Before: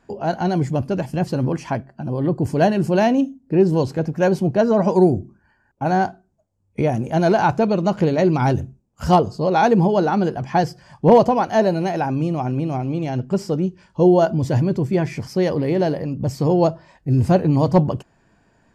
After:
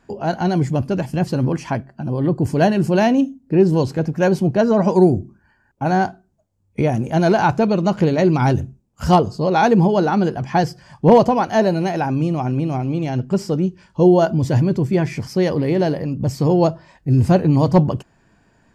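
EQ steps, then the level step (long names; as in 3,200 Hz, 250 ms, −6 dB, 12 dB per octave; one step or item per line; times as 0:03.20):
parametric band 620 Hz −2.5 dB 1.4 octaves
+2.5 dB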